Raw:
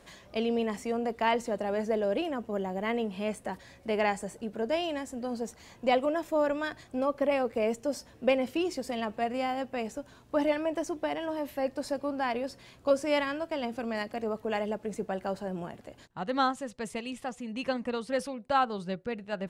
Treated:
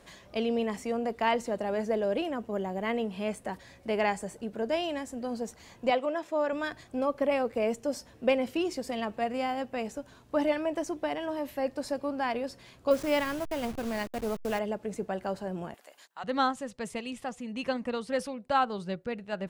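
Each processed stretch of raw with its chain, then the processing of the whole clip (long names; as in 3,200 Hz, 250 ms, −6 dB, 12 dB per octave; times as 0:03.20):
0:05.90–0:06.53: high-pass filter 380 Hz 6 dB per octave + high-frequency loss of the air 51 metres
0:12.91–0:14.59: hold until the input has moved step −38 dBFS + low-shelf EQ 110 Hz +8.5 dB
0:15.74–0:16.24: high-pass filter 810 Hz + high-shelf EQ 9,300 Hz +11 dB
whole clip: no processing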